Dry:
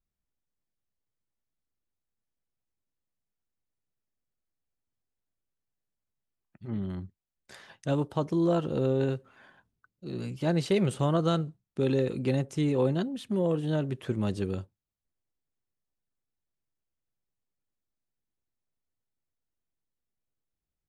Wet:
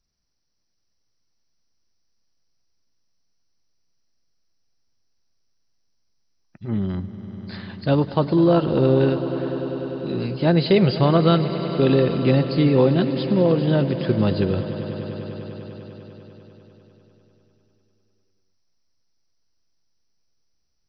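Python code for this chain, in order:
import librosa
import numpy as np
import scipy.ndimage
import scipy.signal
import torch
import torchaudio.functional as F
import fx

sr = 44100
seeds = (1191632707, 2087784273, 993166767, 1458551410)

y = fx.freq_compress(x, sr, knee_hz=3900.0, ratio=4.0)
y = fx.echo_swell(y, sr, ms=99, loudest=5, wet_db=-16.5)
y = y * librosa.db_to_amplitude(9.0)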